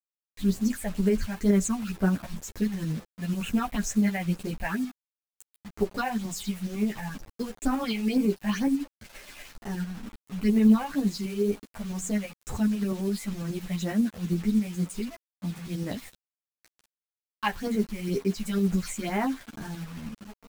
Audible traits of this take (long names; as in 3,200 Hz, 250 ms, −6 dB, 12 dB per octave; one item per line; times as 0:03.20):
phaser sweep stages 6, 2.1 Hz, lowest notch 320–4,800 Hz
a quantiser's noise floor 8 bits, dither none
tremolo saw up 12 Hz, depth 40%
a shimmering, thickened sound